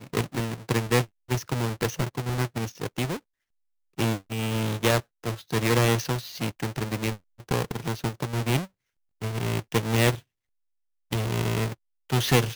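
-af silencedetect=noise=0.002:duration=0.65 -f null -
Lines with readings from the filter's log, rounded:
silence_start: 3.20
silence_end: 3.98 | silence_duration: 0.78
silence_start: 10.21
silence_end: 11.11 | silence_duration: 0.90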